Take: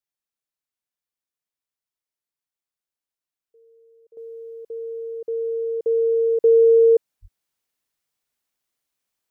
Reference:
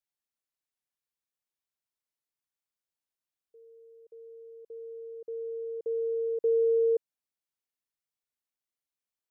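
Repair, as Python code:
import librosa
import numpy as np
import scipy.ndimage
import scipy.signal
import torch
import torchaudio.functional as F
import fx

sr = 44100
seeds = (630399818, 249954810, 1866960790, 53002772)

y = fx.highpass(x, sr, hz=140.0, slope=24, at=(7.21, 7.33), fade=0.02)
y = fx.fix_level(y, sr, at_s=4.17, step_db=-11.0)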